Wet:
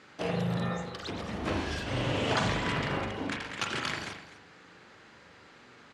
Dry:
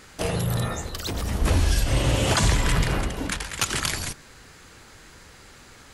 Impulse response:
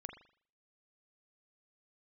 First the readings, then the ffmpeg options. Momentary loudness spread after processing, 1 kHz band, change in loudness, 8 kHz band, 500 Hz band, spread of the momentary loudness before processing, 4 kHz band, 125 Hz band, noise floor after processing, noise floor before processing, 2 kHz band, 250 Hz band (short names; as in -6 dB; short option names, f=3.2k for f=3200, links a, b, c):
9 LU, -3.5 dB, -7.5 dB, -17.0 dB, -4.0 dB, 10 LU, -7.5 dB, -10.0 dB, -55 dBFS, -49 dBFS, -4.5 dB, -4.0 dB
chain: -filter_complex "[0:a]highpass=150,lowpass=3.9k,aecho=1:1:251:0.178[a];[1:a]atrim=start_sample=2205[b];[a][b]afir=irnorm=-1:irlink=0"